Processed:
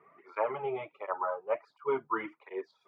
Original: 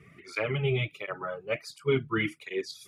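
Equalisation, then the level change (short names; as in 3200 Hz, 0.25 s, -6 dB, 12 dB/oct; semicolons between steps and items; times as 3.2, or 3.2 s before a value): HPF 540 Hz 12 dB/oct; synth low-pass 950 Hz, resonance Q 5.6; 0.0 dB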